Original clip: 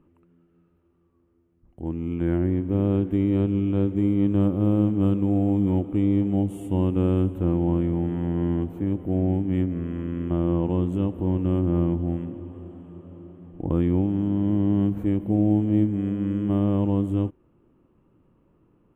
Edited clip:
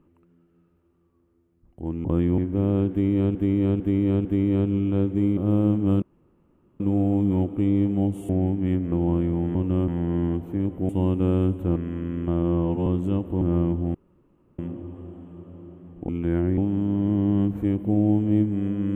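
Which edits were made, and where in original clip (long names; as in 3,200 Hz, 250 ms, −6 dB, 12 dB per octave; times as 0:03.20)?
0:02.05–0:02.54: swap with 0:13.66–0:13.99
0:03.06–0:03.51: repeat, 4 plays
0:04.18–0:04.51: remove
0:05.16: splice in room tone 0.78 s
0:06.65–0:07.52: swap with 0:09.16–0:09.79
0:10.46–0:10.75: time-stretch 1.5×
0:11.30–0:11.63: move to 0:08.15
0:12.16: splice in room tone 0.64 s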